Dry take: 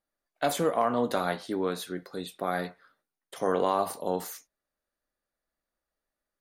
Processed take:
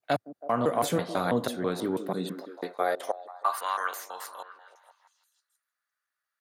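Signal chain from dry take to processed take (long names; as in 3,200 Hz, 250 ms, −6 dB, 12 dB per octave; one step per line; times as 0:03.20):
slices reordered back to front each 164 ms, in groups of 3
echo through a band-pass that steps 162 ms, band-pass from 290 Hz, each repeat 0.7 octaves, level −9 dB
high-pass filter sweep 110 Hz → 1,400 Hz, 0:01.89–0:03.63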